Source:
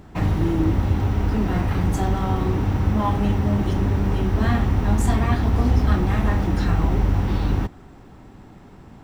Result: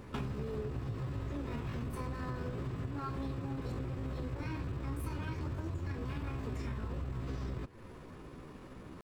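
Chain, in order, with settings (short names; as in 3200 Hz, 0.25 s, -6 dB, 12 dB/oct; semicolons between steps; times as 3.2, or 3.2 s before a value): compressor 10:1, threshold -30 dBFS, peak gain reduction 17.5 dB; pitch shift +5 st; gain -5 dB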